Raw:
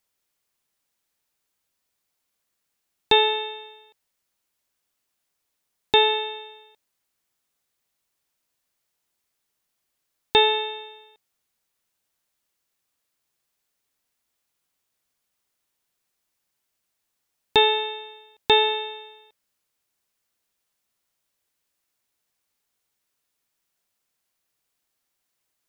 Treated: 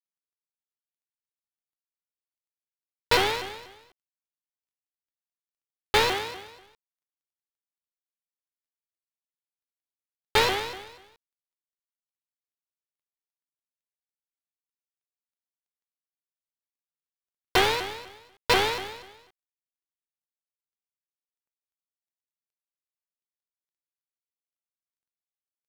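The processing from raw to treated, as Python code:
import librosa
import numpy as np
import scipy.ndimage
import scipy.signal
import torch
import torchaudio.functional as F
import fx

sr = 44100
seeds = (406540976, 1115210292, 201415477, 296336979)

y = fx.dead_time(x, sr, dead_ms=0.25)
y = fx.highpass(y, sr, hz=55.0, slope=12, at=(6.14, 6.55))
y = fx.vibrato_shape(y, sr, shape='saw_up', rate_hz=4.1, depth_cents=250.0)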